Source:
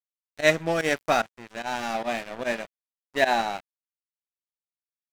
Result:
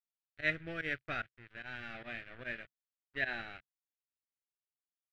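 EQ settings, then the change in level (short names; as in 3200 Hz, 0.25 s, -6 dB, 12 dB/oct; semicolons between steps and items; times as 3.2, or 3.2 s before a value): EQ curve 130 Hz 0 dB, 190 Hz -14 dB, 330 Hz -9 dB, 930 Hz -18 dB, 1500 Hz +1 dB; dynamic EQ 970 Hz, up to -6 dB, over -46 dBFS, Q 2; air absorption 480 m; -4.5 dB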